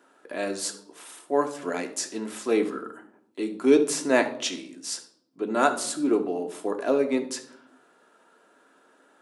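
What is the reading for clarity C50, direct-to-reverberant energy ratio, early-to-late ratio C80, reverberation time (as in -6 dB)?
11.0 dB, 5.0 dB, 16.0 dB, 0.70 s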